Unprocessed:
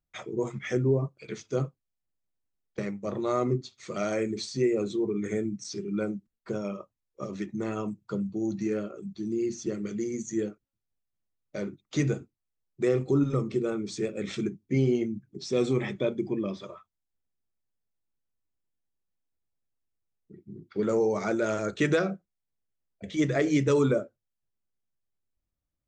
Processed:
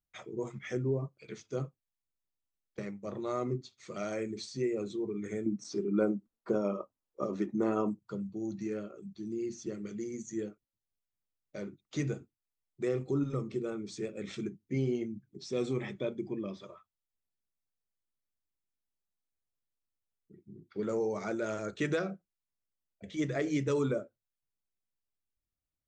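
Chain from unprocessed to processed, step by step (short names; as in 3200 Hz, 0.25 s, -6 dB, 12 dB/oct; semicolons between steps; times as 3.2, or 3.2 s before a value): 5.46–7.99 band shelf 540 Hz +10 dB 3 oct; gain -7 dB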